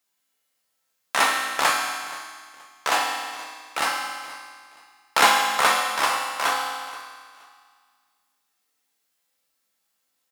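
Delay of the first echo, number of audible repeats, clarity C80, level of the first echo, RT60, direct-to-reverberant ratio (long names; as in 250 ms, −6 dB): 475 ms, 2, 3.5 dB, −18.5 dB, 2.0 s, −1.0 dB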